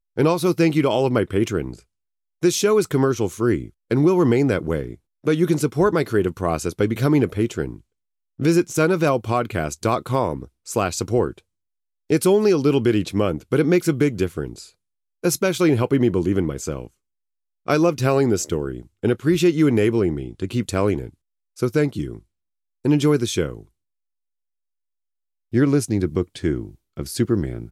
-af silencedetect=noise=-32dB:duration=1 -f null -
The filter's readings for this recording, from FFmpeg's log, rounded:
silence_start: 23.61
silence_end: 25.53 | silence_duration: 1.93